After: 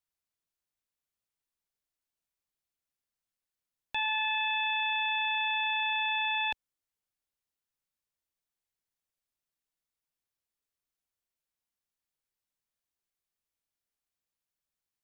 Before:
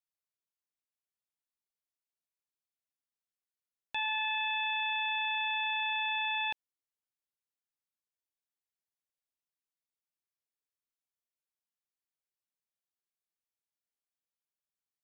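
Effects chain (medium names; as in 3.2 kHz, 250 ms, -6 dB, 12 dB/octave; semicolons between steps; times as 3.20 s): bass shelf 93 Hz +10 dB; trim +2.5 dB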